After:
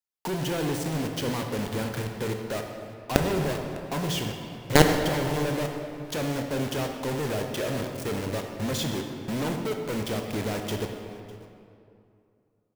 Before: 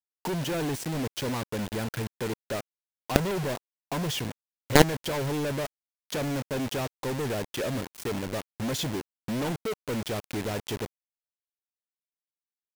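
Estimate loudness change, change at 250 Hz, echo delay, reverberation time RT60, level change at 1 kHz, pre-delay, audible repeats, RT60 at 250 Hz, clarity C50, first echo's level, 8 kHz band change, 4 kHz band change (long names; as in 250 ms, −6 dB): +1.5 dB, +2.0 dB, 603 ms, 2.6 s, +2.0 dB, 18 ms, 1, 2.8 s, 4.5 dB, −20.5 dB, +1.0 dB, +1.5 dB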